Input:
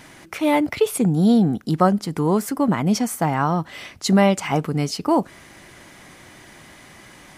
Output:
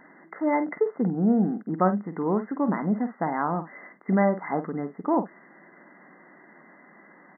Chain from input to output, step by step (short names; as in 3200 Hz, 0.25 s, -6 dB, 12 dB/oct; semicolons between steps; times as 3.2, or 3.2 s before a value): brick-wall FIR band-pass 160–2100 Hz; doubler 49 ms -11 dB; gain -5.5 dB